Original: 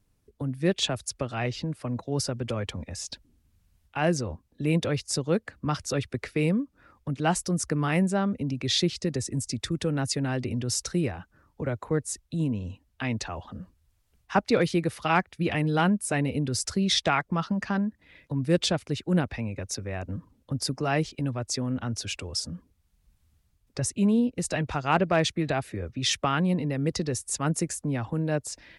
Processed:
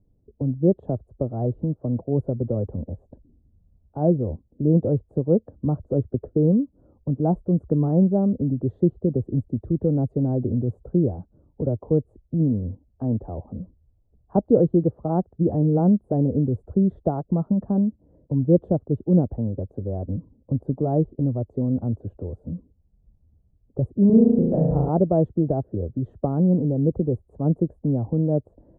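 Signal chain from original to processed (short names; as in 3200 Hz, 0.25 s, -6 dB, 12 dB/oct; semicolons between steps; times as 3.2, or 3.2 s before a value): inverse Chebyshev low-pass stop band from 2100 Hz, stop band 60 dB; 24.06–24.89 flutter echo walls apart 6.2 m, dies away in 1.2 s; gain +6.5 dB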